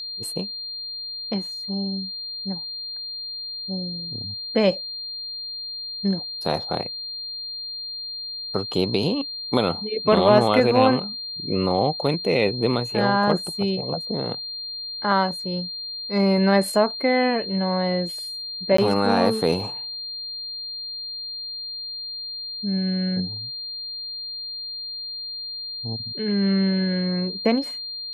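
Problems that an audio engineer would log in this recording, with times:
whistle 4,200 Hz −30 dBFS
0:18.77–0:18.78: drop-out 14 ms

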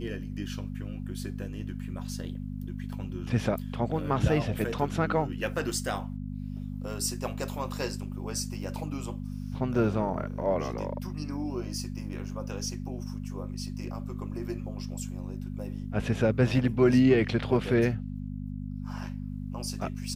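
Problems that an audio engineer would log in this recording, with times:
mains hum 50 Hz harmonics 5 −36 dBFS

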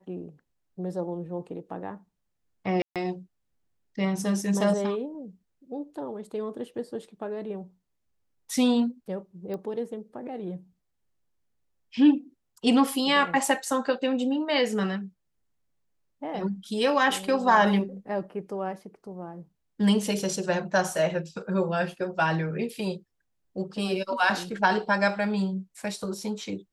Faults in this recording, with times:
0:02.82–0:02.96: drop-out 137 ms
0:09.54: click −24 dBFS

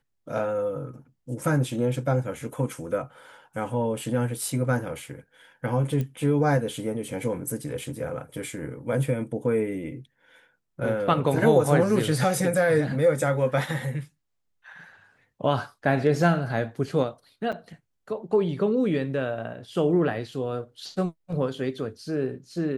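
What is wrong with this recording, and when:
0:06.01: click −18 dBFS
0:17.52–0:17.53: drop-out 6.1 ms

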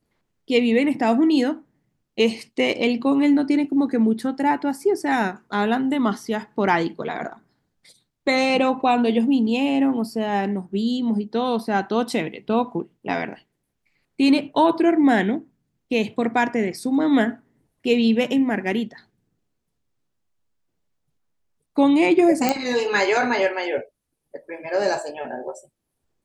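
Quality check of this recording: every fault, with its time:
0:22.49: click −5 dBFS

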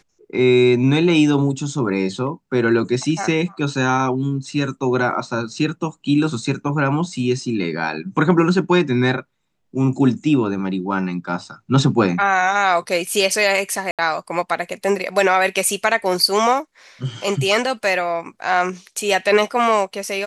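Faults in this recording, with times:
0:13.91–0:13.99: drop-out 77 ms

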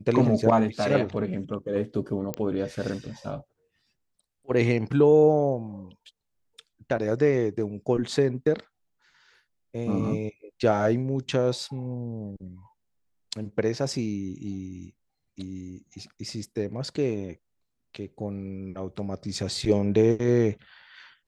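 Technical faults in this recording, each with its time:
0:02.34: click −14 dBFS

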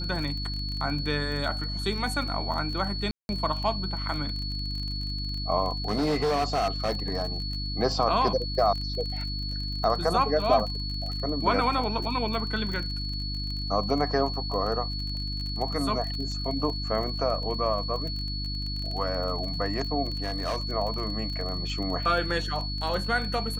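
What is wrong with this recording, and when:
surface crackle 27 per second −32 dBFS
mains hum 50 Hz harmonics 6 −33 dBFS
whistle 4,400 Hz −34 dBFS
0:03.11–0:03.29: drop-out 181 ms
0:05.88–0:07.40: clipping −21.5 dBFS
0:20.16–0:20.58: clipping −24.5 dBFS

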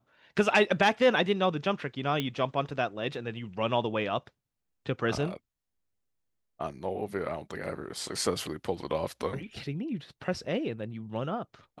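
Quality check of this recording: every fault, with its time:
0:02.20: click −16 dBFS

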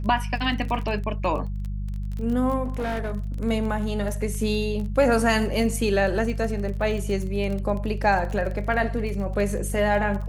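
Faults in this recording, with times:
surface crackle 26 per second −30 dBFS
mains hum 50 Hz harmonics 4 −29 dBFS
0:02.64–0:03.12: clipping −23.5 dBFS

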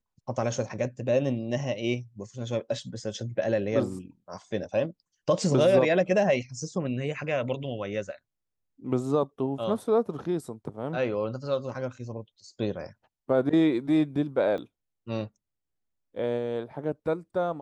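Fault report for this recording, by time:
0:14.58: drop-out 2.8 ms

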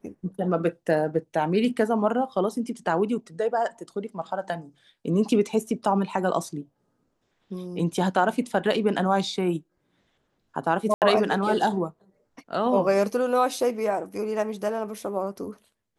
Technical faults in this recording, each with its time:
0:10.94–0:11.02: drop-out 78 ms

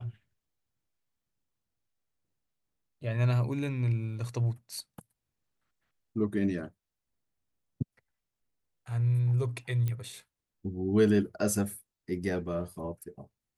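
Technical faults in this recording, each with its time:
0:09.88: click −21 dBFS

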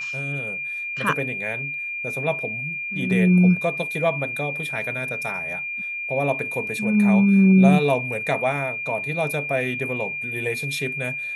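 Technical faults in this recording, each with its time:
whistle 2,400 Hz −27 dBFS

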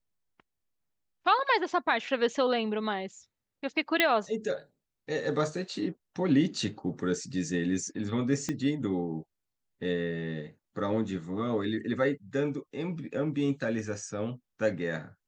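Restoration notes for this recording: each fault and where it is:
0:04.00: click −9 dBFS
0:08.49: click −18 dBFS

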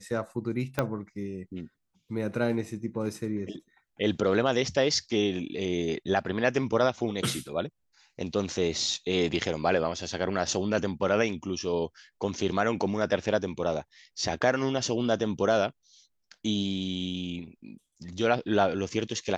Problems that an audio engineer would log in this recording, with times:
0:00.79: click −12 dBFS

